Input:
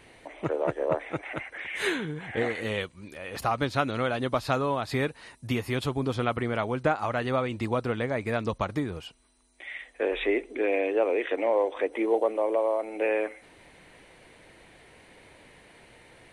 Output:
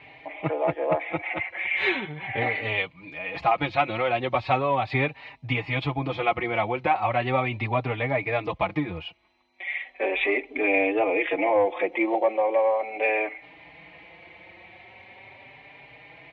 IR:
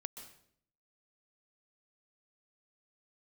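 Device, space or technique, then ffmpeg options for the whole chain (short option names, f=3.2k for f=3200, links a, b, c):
barber-pole flanger into a guitar amplifier: -filter_complex "[0:a]asplit=2[a][b];[b]adelay=4.6,afreqshift=0.38[c];[a][c]amix=inputs=2:normalize=1,asoftclip=type=tanh:threshold=-17.5dB,highpass=88,equalizer=f=230:t=q:w=4:g=-9,equalizer=f=430:t=q:w=4:g=-7,equalizer=f=780:t=q:w=4:g=6,equalizer=f=1.5k:t=q:w=4:g=-8,equalizer=f=2.3k:t=q:w=4:g=9,lowpass=f=3.5k:w=0.5412,lowpass=f=3.5k:w=1.3066,asettb=1/sr,asplit=3[d][e][f];[d]atrim=end=10.544[g];[e]atrim=start=10.54:end=11.95,asetpts=PTS-STARTPTS,afade=t=in:d=0.004:c=qsin,afade=t=out:st=1.406:d=0.004:c=qsin,bass=f=250:g=9,treble=f=4k:g=0[h];[f]atrim=start=11.946[i];[g][h]acrossfade=d=0.004:c1=hsin:c2=qsin[j];[j][i]acrossfade=d=0.004:c1=qsin:c2=hsin,volume=7dB"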